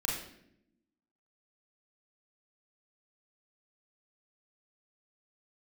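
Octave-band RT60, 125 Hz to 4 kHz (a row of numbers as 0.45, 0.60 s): 1.1, 1.3, 0.90, 0.60, 0.65, 0.60 s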